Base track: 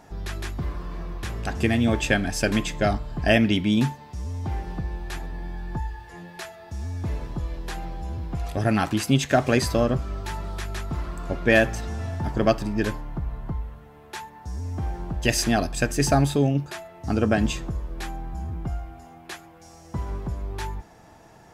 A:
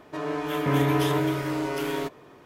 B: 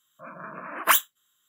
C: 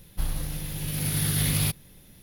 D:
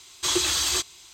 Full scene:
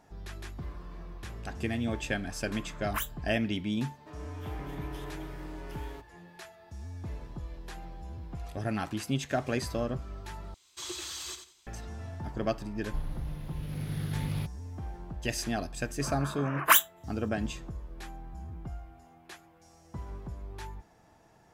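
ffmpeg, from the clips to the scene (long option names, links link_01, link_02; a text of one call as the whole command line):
ffmpeg -i bed.wav -i cue0.wav -i cue1.wav -i cue2.wav -i cue3.wav -filter_complex "[2:a]asplit=2[link_01][link_02];[0:a]volume=-10.5dB[link_03];[1:a]alimiter=limit=-16dB:level=0:latency=1:release=62[link_04];[4:a]aecho=1:1:88|176|264:0.376|0.0902|0.0216[link_05];[3:a]lowpass=frequency=1100:poles=1[link_06];[link_03]asplit=2[link_07][link_08];[link_07]atrim=end=10.544[link_09];[link_05]atrim=end=1.13,asetpts=PTS-STARTPTS,volume=-16dB[link_10];[link_08]atrim=start=11.666[link_11];[link_01]atrim=end=1.48,asetpts=PTS-STARTPTS,volume=-15dB,afade=type=in:duration=0.004:curve=hsin,afade=type=out:start_time=1.476:duration=0.004:curve=hsin,adelay=2070[link_12];[link_04]atrim=end=2.45,asetpts=PTS-STARTPTS,volume=-17dB,afade=type=in:duration=0.004:curve=hsin,afade=type=out:start_time=2.446:duration=0.004:curve=hsin,adelay=173313S[link_13];[link_06]atrim=end=2.22,asetpts=PTS-STARTPTS,volume=-6dB,afade=type=in:duration=0.004:curve=hsin,afade=type=out:start_time=2.216:duration=0.004:curve=hsin,adelay=12750[link_14];[link_02]atrim=end=1.48,asetpts=PTS-STARTPTS,volume=-1dB,afade=type=in:duration=0.004:curve=hsin,afade=type=out:start_time=1.476:duration=0.004:curve=hsin,adelay=15810[link_15];[link_09][link_10]acrossfade=duration=0.004:curve1=hsin:curve2=hsin[link_16];[link_16][link_11]acrossfade=duration=0.004:curve1=hsin:curve2=hsin[link_17];[link_17][link_12][link_13][link_14][link_15]amix=inputs=5:normalize=0" out.wav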